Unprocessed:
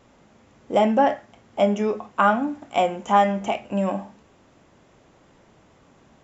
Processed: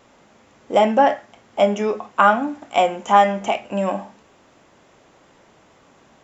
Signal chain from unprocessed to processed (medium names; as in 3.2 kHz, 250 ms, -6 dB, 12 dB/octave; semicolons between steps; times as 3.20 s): bass shelf 260 Hz -9.5 dB; trim +5 dB